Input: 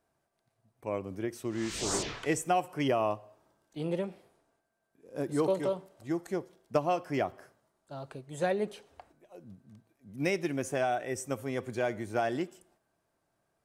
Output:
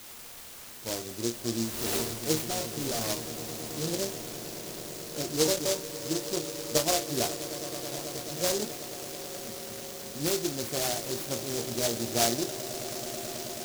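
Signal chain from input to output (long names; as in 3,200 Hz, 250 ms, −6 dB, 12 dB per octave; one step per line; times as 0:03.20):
in parallel at −6 dB: bit-depth reduction 6 bits, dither triangular
on the sum: resonators tuned to a chord D#2 fifth, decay 0.21 s
0:02.42–0:03.10: hard clipping −36.5 dBFS, distortion −13 dB
echo that builds up and dies away 108 ms, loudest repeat 8, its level −17.5 dB
short delay modulated by noise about 5,400 Hz, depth 0.21 ms
level +6.5 dB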